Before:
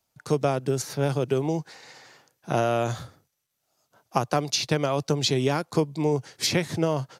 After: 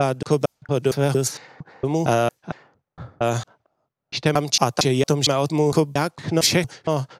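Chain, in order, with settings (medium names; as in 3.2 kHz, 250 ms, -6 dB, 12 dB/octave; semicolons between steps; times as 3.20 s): slices played last to first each 229 ms, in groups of 3; level-controlled noise filter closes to 970 Hz, open at -21.5 dBFS; treble shelf 7 kHz +7 dB; trim +4.5 dB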